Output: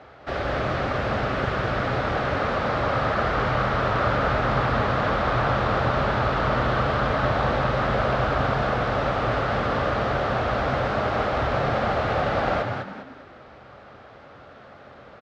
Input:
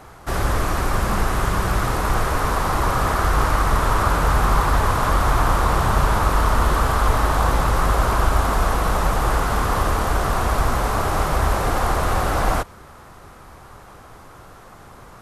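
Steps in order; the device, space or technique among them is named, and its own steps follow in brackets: frequency-shifting delay pedal into a guitar cabinet (frequency-shifting echo 0.201 s, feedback 34%, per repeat +77 Hz, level -5.5 dB; speaker cabinet 95–4100 Hz, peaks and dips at 100 Hz -5 dB, 170 Hz -9 dB, 340 Hz -3 dB, 580 Hz +6 dB, 1000 Hz -8 dB); gain -2 dB

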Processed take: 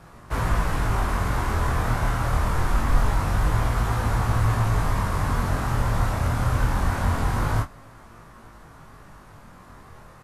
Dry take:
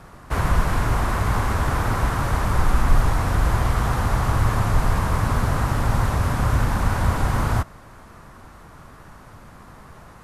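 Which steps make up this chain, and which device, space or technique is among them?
double-tracked vocal (doubler 26 ms -9 dB; chorus 0.24 Hz, delay 17.5 ms, depth 7.1 ms)

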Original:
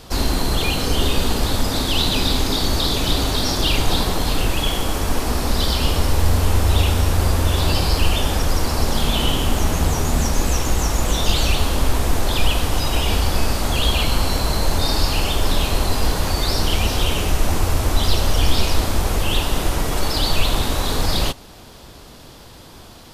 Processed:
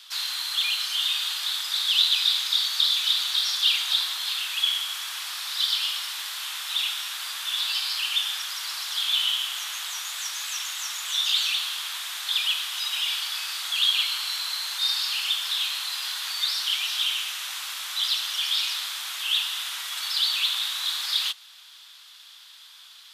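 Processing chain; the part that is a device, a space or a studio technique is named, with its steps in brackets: headphones lying on a table (HPF 1300 Hz 24 dB/oct; bell 3500 Hz +10 dB 0.57 oct); gain -6 dB

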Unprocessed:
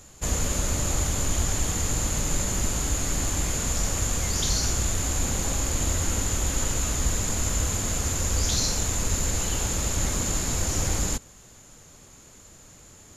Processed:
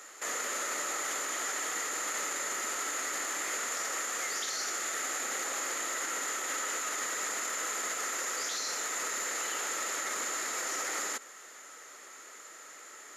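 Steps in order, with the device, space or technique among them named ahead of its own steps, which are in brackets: laptop speaker (HPF 360 Hz 24 dB/oct; bell 1300 Hz +12 dB 0.24 oct; bell 1900 Hz +12 dB 0.44 oct; limiter -25.5 dBFS, peak gain reduction 11.5 dB); 4.22–5.45 notch 1000 Hz, Q 12

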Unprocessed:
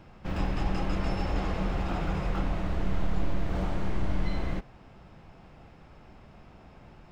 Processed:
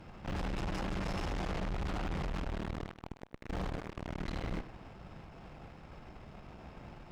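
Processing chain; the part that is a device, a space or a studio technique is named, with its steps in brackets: 1.53–2.81 low shelf 160 Hz +4 dB; rockabilly slapback (tube stage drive 39 dB, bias 0.7; tape echo 98 ms, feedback 24%, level -13 dB, low-pass 3800 Hz); gain +5 dB

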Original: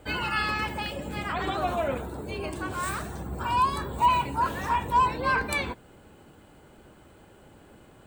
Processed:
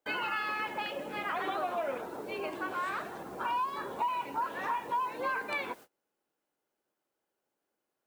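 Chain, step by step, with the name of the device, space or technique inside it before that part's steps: baby monitor (BPF 370–3000 Hz; compressor, threshold -30 dBFS, peak gain reduction 12.5 dB; white noise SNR 25 dB; gate -49 dBFS, range -30 dB)

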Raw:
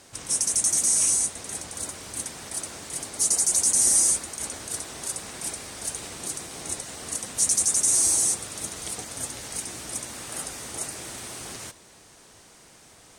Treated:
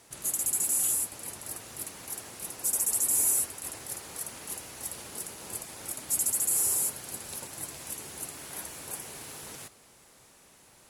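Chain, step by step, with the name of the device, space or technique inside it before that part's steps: nightcore (varispeed +21%); gain -5.5 dB

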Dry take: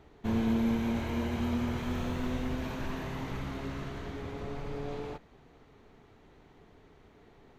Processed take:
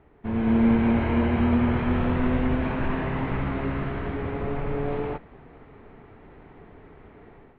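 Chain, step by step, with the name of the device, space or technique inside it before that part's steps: action camera in a waterproof case (LPF 2500 Hz 24 dB/oct; AGC gain up to 10 dB; AAC 48 kbps 44100 Hz)

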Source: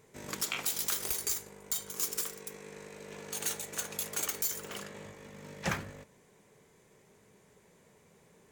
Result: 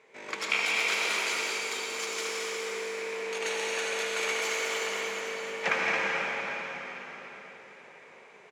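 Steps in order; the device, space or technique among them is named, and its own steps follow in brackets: station announcement (BPF 460–3800 Hz; bell 2300 Hz +7 dB 0.45 oct; loudspeakers at several distances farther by 77 m -6 dB, 95 m -11 dB; reverb RT60 4.7 s, pre-delay 69 ms, DRR -4 dB); gain +4.5 dB

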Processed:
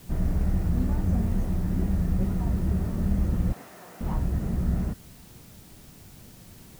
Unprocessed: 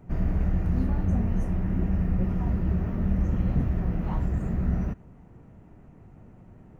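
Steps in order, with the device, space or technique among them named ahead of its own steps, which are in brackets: plain cassette with noise reduction switched in (mismatched tape noise reduction decoder only; wow and flutter; white noise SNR 28 dB); 3.53–4.01 HPF 720 Hz 12 dB/oct

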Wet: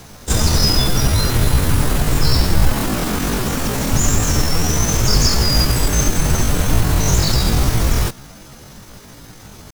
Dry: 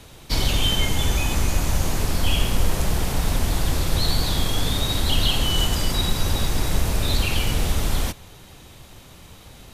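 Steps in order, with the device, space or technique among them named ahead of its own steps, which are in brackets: chipmunk voice (pitch shift +8.5 st); 2.77–3.92 resonant low shelf 140 Hz -8 dB, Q 1.5; gain +6 dB

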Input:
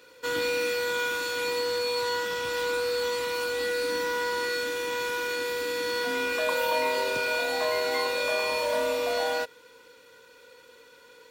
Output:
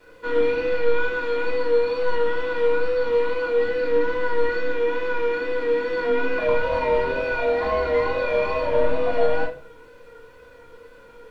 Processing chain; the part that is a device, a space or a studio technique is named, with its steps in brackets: tape answering machine (BPF 340–2900 Hz; soft clip -23 dBFS, distortion -19 dB; wow and flutter 44 cents; white noise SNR 30 dB); RIAA curve playback; shoebox room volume 280 m³, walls furnished, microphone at 3.1 m

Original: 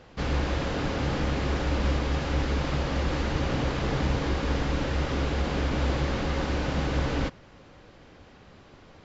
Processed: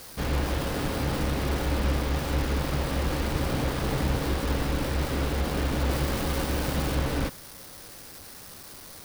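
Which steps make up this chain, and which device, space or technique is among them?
budget class-D amplifier (switching dead time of 0.21 ms; switching spikes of -27 dBFS); 5.9–6.95 high shelf 5800 Hz +5 dB

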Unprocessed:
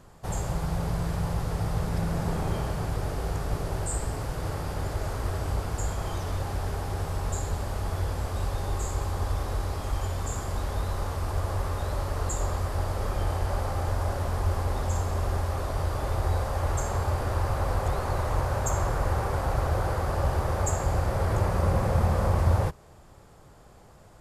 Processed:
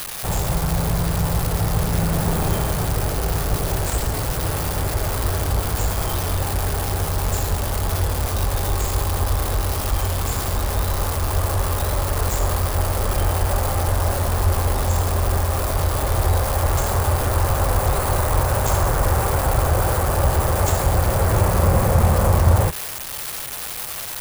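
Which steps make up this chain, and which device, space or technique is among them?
budget class-D amplifier (switching dead time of 0.081 ms; switching spikes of -19 dBFS); gain +7.5 dB

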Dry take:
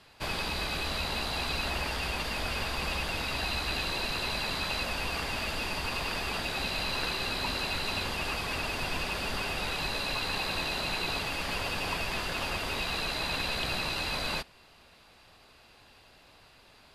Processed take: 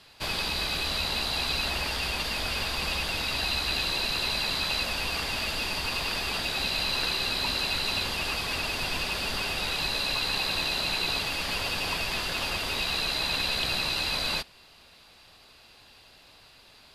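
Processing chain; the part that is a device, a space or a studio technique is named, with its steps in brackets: presence and air boost (bell 4100 Hz +5.5 dB 1.3 oct; high shelf 9400 Hz +7 dB)

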